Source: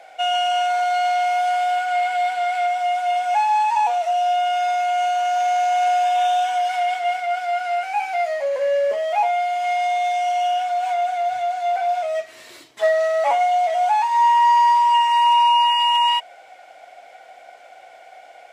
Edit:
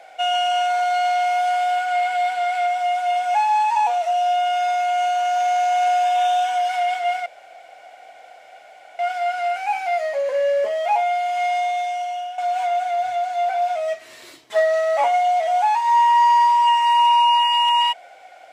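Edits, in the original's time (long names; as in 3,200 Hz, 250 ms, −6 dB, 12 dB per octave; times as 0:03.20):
0:07.26: splice in room tone 1.73 s
0:09.79–0:10.65: fade out, to −12 dB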